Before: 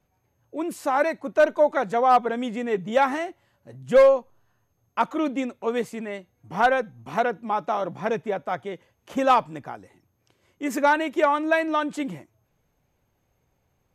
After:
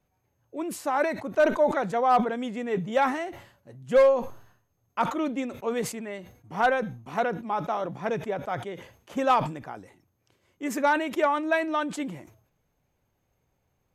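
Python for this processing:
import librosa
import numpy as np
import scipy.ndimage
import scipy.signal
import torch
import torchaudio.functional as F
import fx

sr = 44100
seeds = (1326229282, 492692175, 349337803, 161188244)

y = fx.sustainer(x, sr, db_per_s=100.0)
y = F.gain(torch.from_numpy(y), -3.5).numpy()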